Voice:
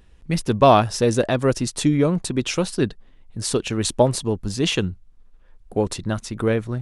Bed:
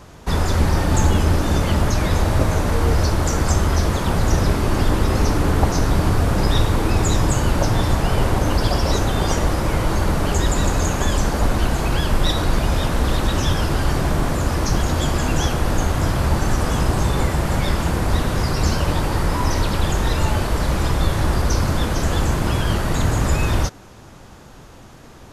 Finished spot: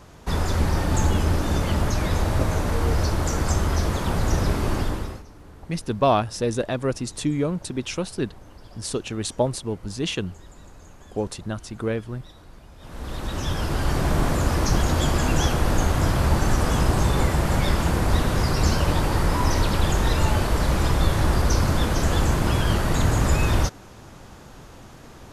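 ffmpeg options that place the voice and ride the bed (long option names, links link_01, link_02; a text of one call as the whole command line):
ffmpeg -i stem1.wav -i stem2.wav -filter_complex "[0:a]adelay=5400,volume=-5.5dB[link_01];[1:a]volume=22dB,afade=type=out:start_time=4.7:duration=0.53:silence=0.0668344,afade=type=in:start_time=12.78:duration=1.44:silence=0.0473151[link_02];[link_01][link_02]amix=inputs=2:normalize=0" out.wav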